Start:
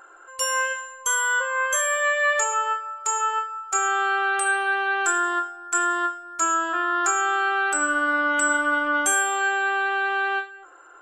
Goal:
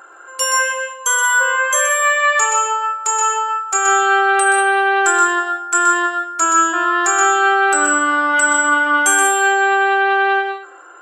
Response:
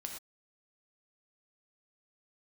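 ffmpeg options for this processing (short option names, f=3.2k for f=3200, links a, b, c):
-filter_complex "[0:a]highpass=110,asplit=2[a][b];[1:a]atrim=start_sample=2205,asetrate=88200,aresample=44100,adelay=125[c];[b][c]afir=irnorm=-1:irlink=0,volume=4dB[d];[a][d]amix=inputs=2:normalize=0,volume=6.5dB"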